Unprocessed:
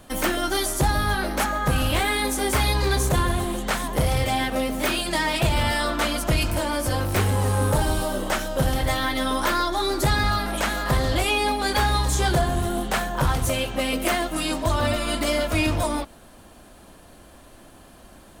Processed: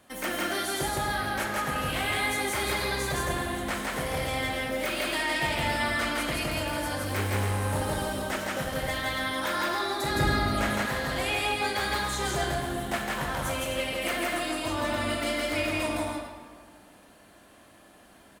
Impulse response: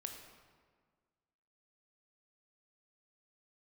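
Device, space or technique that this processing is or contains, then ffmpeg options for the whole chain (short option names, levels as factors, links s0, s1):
stadium PA: -filter_complex "[0:a]highpass=f=180:p=1,equalizer=f=2000:t=o:w=0.76:g=5,aecho=1:1:163.3|268.2:0.891|0.355[s0];[1:a]atrim=start_sample=2205[s1];[s0][s1]afir=irnorm=-1:irlink=0,asettb=1/sr,asplit=3[s2][s3][s4];[s2]atrim=end=10.154[s5];[s3]atrim=start=10.15:end=10.86,asetpts=PTS-STARTPTS,afade=t=in:d=0.004:c=qsin,afade=t=out:st=0.706:d=0.004:c=qsin,lowshelf=f=480:g=8.5[s6];[s4]atrim=start=10.856[s7];[s5][s6]acrossfade=d=0.004:c1=hsin:c2=qsin[s8];[s8][s7]acrossfade=d=0.004:c1=qsin:c2=hsin,volume=0.531"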